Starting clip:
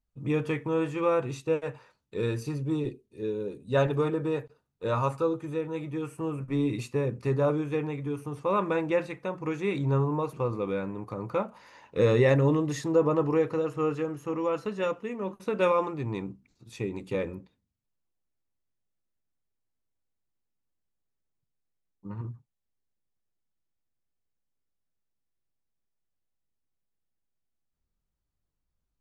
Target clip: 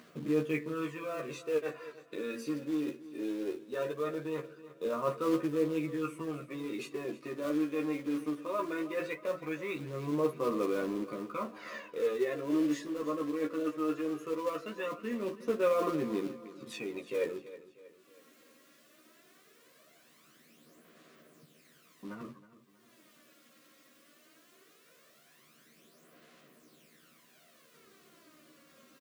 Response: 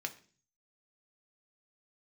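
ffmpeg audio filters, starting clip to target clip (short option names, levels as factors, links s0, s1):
-filter_complex "[0:a]areverse,acompressor=threshold=0.0224:ratio=10,areverse,highpass=f=190:w=0.5412,highpass=f=190:w=1.3066,aphaser=in_gain=1:out_gain=1:delay=3.7:decay=0.56:speed=0.19:type=sinusoidal,asuperstop=centerf=850:order=4:qfactor=3.6,acrusher=bits=4:mode=log:mix=0:aa=0.000001,acompressor=mode=upward:threshold=0.0178:ratio=2.5,bass=f=250:g=-3,treble=f=4000:g=-7,asplit=2[s0][s1];[s1]adelay=13,volume=0.708[s2];[s0][s2]amix=inputs=2:normalize=0,aecho=1:1:319|638|957|1276:0.15|0.0673|0.0303|0.0136"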